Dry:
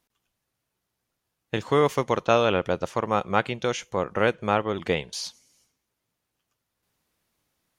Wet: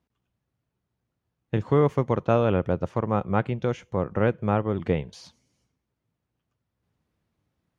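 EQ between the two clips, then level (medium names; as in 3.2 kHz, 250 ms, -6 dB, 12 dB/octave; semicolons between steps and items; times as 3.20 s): high-pass 82 Hz; RIAA curve playback; dynamic bell 4.1 kHz, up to -5 dB, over -42 dBFS, Q 0.94; -3.5 dB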